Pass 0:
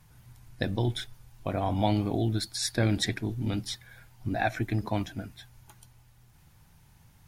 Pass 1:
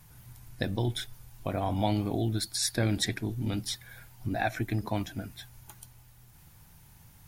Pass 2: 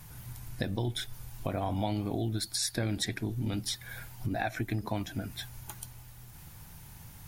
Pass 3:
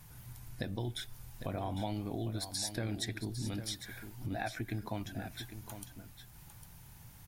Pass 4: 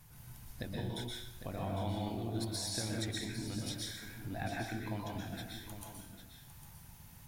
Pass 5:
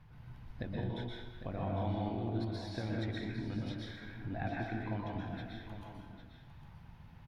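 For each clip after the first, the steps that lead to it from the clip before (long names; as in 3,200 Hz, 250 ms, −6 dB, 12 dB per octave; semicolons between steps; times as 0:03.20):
in parallel at −1 dB: downward compressor, threshold −37 dBFS, peak gain reduction 15.5 dB; on the sum: high-shelf EQ 10,000 Hz +10.5 dB; level −3.5 dB
downward compressor 2.5 to 1, threshold −39 dBFS, peak gain reduction 11 dB; level +6 dB
single-tap delay 803 ms −10.5 dB; level −5.5 dB
in parallel at −10.5 dB: floating-point word with a short mantissa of 2 bits; on the sum: dense smooth reverb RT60 0.74 s, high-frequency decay 0.9×, pre-delay 110 ms, DRR −2 dB; level −6.5 dB
high-frequency loss of the air 340 metres; far-end echo of a speakerphone 210 ms, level −9 dB; level +2 dB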